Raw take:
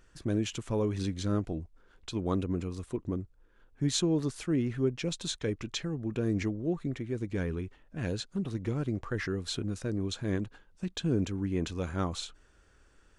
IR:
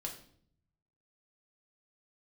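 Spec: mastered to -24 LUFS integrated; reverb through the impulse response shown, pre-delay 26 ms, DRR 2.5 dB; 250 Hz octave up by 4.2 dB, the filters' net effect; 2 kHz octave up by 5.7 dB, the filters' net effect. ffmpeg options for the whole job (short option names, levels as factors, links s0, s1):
-filter_complex "[0:a]equalizer=f=250:t=o:g=5.5,equalizer=f=2000:t=o:g=7,asplit=2[s0][s1];[1:a]atrim=start_sample=2205,adelay=26[s2];[s1][s2]afir=irnorm=-1:irlink=0,volume=0.841[s3];[s0][s3]amix=inputs=2:normalize=0,volume=1.5"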